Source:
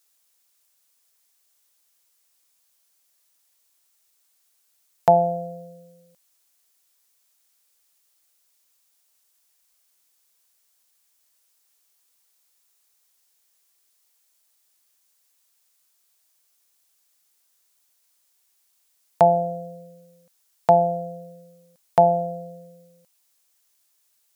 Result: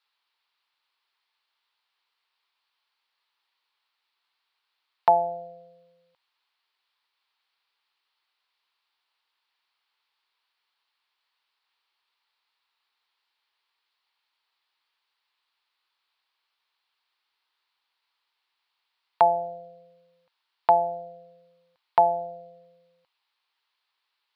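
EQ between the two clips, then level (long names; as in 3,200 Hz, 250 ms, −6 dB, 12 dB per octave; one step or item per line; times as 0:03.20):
drawn EQ curve 100 Hz 0 dB, 200 Hz −12 dB, 360 Hz +2 dB, 610 Hz −1 dB, 920 Hz +14 dB, 1,600 Hz +9 dB, 2,800 Hz +10 dB, 4,400 Hz +7 dB, 6,500 Hz −20 dB
−9.0 dB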